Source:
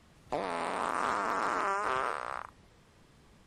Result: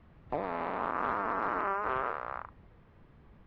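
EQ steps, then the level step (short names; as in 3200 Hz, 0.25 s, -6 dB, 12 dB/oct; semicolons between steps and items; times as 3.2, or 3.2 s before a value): LPF 2200 Hz 12 dB/oct; air absorption 100 m; low shelf 130 Hz +6.5 dB; 0.0 dB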